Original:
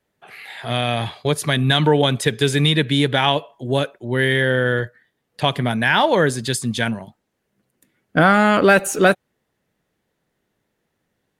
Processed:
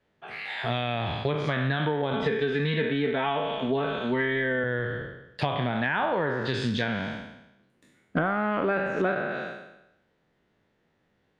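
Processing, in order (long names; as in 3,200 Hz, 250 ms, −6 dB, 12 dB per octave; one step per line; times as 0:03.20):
peak hold with a decay on every bin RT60 0.89 s
low-pass filter 4,000 Hz 12 dB per octave
treble cut that deepens with the level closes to 2,200 Hz, closed at −12.5 dBFS
0:02.13–0:04.64: comb filter 4.5 ms, depth 76%
downward compressor 6 to 1, threshold −24 dBFS, peak gain reduction 15.5 dB
highs frequency-modulated by the lows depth 0.12 ms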